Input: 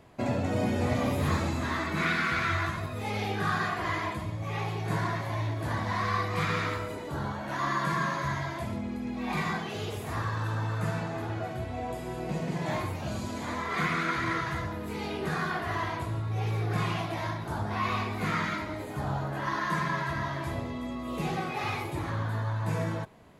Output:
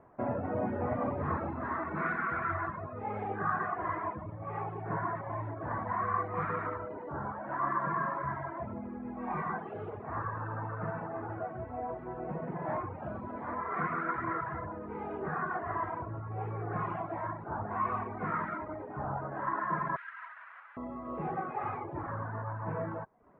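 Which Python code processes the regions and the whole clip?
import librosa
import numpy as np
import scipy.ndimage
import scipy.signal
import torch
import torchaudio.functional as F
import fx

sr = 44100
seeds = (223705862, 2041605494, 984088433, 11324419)

y = fx.chain(x, sr, fx.halfwave_hold(),
    fx.highpass(hz=1500.0, slope=24),
    fx.high_shelf(hz=5700.0, db=-7.5), at=(19.96, 20.77))
y = scipy.signal.sosfilt(scipy.signal.cheby2(4, 70, 6100.0, 'lowpass', fs=sr, output='sos'), y)
y = fx.dereverb_blind(y, sr, rt60_s=0.54)
y = fx.low_shelf(y, sr, hz=320.0, db=-10.0)
y = F.gain(torch.from_numpy(y), 1.5).numpy()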